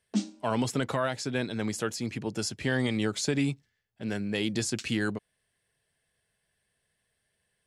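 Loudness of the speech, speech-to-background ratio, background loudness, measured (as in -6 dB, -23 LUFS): -30.5 LUFS, 4.0 dB, -34.5 LUFS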